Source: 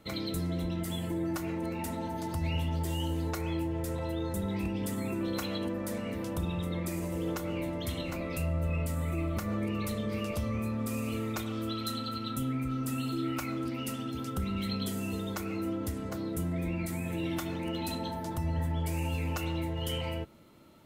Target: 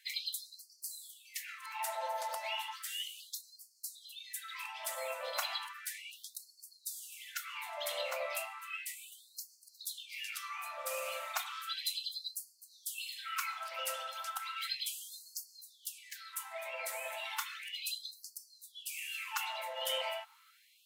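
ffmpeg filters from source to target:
-filter_complex "[0:a]asplit=2[a][b];[b]asetrate=52444,aresample=44100,atempo=0.840896,volume=-14dB[c];[a][c]amix=inputs=2:normalize=0,afftfilt=real='re*gte(b*sr/1024,480*pow(4300/480,0.5+0.5*sin(2*PI*0.34*pts/sr)))':imag='im*gte(b*sr/1024,480*pow(4300/480,0.5+0.5*sin(2*PI*0.34*pts/sr)))':win_size=1024:overlap=0.75,volume=2.5dB"

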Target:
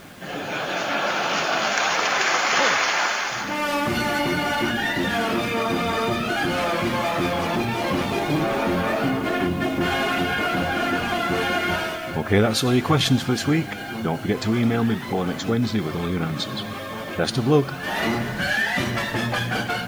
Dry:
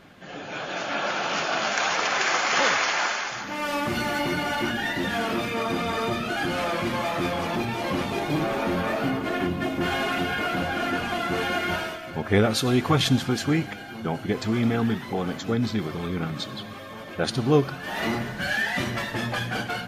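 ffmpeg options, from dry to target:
-filter_complex "[0:a]asplit=2[a][b];[b]acompressor=threshold=-33dB:ratio=6,volume=3dB[c];[a][c]amix=inputs=2:normalize=0,acrusher=bits=7:mix=0:aa=0.000001"

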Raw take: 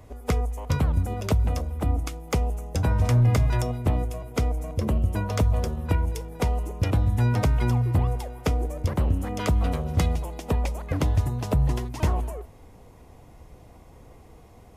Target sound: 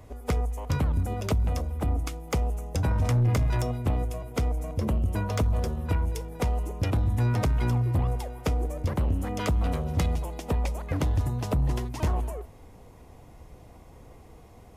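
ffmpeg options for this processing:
-af "acontrast=84,asoftclip=type=tanh:threshold=-10dB,volume=-7.5dB"

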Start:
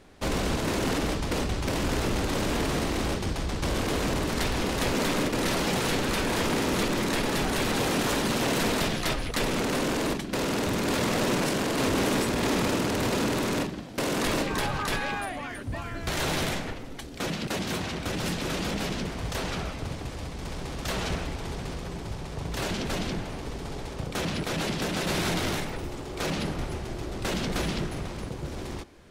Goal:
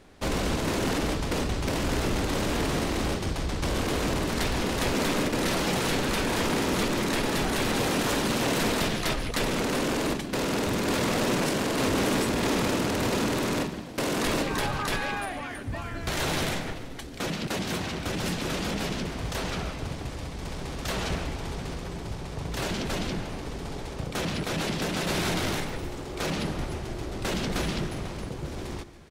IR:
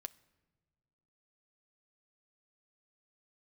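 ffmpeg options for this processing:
-af "aecho=1:1:145|290|435|580|725|870:0.141|0.0848|0.0509|0.0305|0.0183|0.011"

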